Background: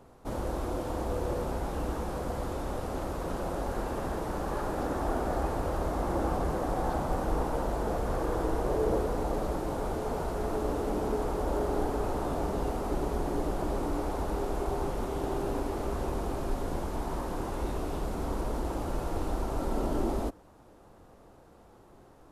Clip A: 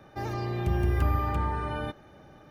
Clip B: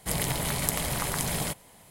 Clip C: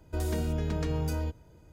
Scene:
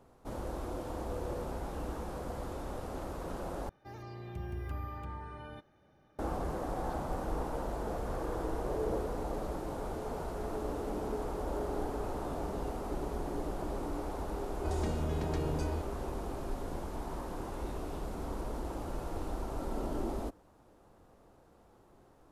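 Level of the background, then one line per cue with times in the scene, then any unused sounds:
background -6 dB
3.69 s: replace with A -14 dB
14.51 s: add C -5 dB + low-pass 9 kHz 24 dB/octave
not used: B

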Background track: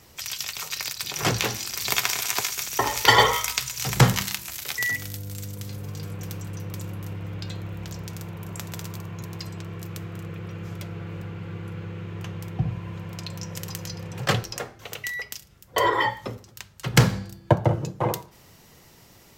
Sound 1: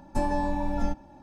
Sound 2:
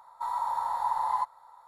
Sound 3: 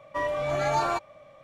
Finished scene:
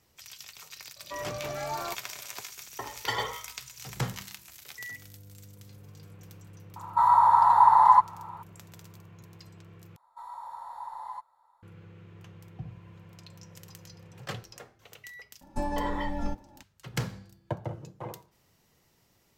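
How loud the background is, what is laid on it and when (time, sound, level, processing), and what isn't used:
background track -15 dB
0.96 s: add 3 -9 dB
6.76 s: add 2 + peaking EQ 1.2 kHz +13 dB 1.9 oct
9.96 s: replace with 2 -11.5 dB
15.41 s: add 1 -4.5 dB

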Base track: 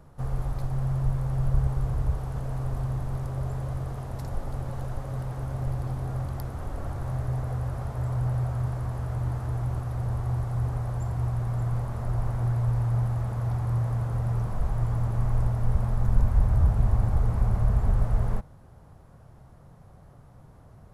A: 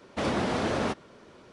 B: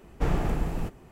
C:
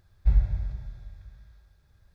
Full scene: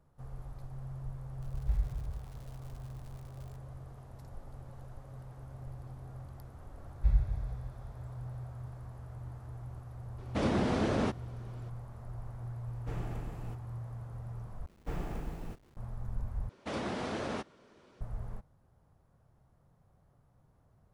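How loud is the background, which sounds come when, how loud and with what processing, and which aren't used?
base track -15.5 dB
1.42 s: add C -10 dB + crackle 200 per s -36 dBFS
6.78 s: add C -6 dB
10.18 s: add A -6.5 dB + bass shelf 380 Hz +9 dB
12.66 s: add B -14 dB
14.66 s: replace with B -11.5 dB + send-on-delta sampling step -45.5 dBFS
16.49 s: replace with A -8.5 dB

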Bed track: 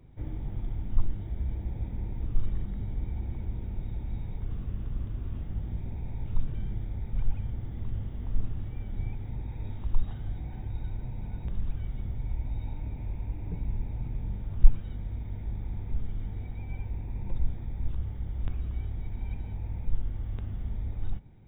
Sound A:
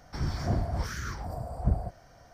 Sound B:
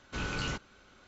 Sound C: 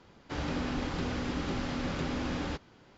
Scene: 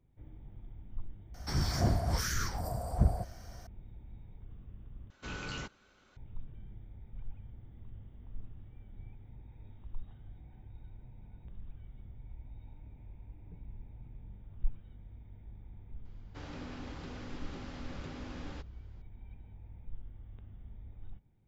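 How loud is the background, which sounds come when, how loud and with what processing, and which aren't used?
bed track -15.5 dB
1.34 s: add A -0.5 dB + treble shelf 4.2 kHz +11.5 dB
5.10 s: replace with B -6 dB
16.05 s: add C -11.5 dB

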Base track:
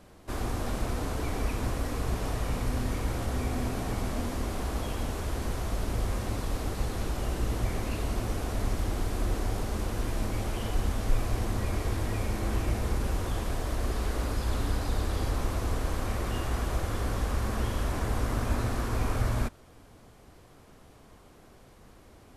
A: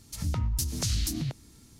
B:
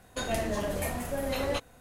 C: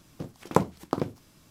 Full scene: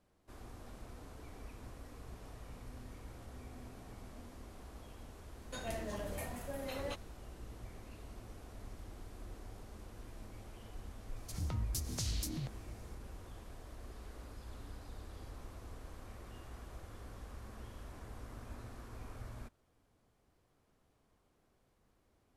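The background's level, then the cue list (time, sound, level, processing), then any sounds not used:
base track -20 dB
5.36 s: add B -11 dB
11.16 s: add A -9 dB
not used: C

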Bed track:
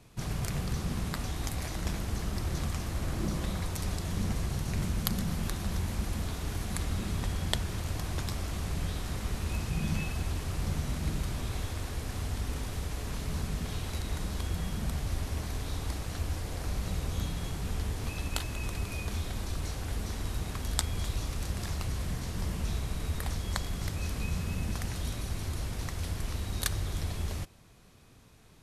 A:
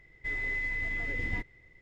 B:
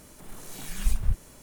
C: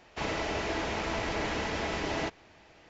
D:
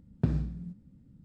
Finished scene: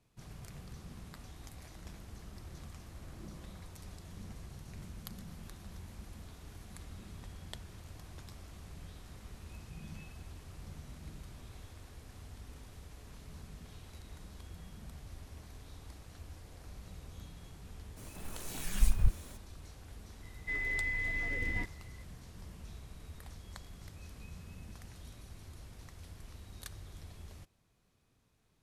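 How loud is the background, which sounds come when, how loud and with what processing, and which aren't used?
bed track -16 dB
17.96 s: add B -2 dB, fades 0.02 s
20.23 s: add A -2 dB
not used: C, D

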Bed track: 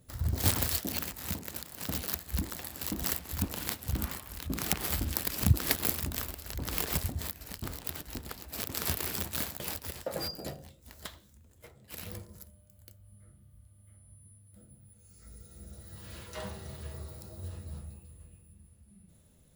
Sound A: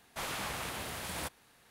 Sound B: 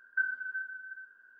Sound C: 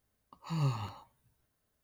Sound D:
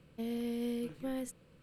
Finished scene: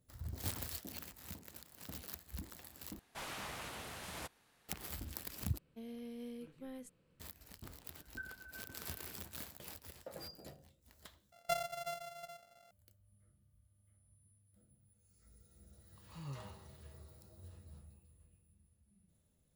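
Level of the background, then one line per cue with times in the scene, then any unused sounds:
bed track -13.5 dB
2.99 s: replace with A -7 dB + loudspeaker Doppler distortion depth 0.43 ms
5.58 s: replace with D -11 dB
8.00 s: add B -17 dB
11.32 s: replace with B -5.5 dB + sorted samples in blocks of 64 samples
15.65 s: add C -15 dB

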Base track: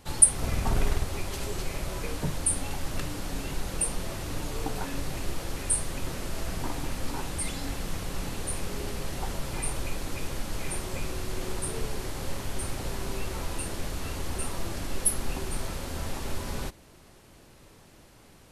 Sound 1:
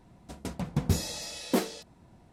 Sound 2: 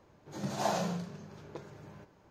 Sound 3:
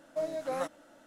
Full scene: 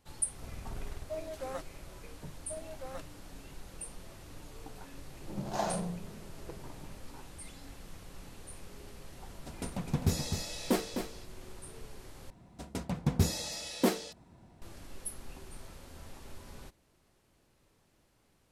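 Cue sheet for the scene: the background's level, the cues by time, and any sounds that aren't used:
base track -15.5 dB
0.94 s: add 3 -6.5 dB
2.34 s: add 3 -11 dB
4.94 s: add 2 -1.5 dB + local Wiener filter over 25 samples
9.17 s: add 1 -3 dB + delay 256 ms -7.5 dB
12.30 s: replace with 1 -1 dB

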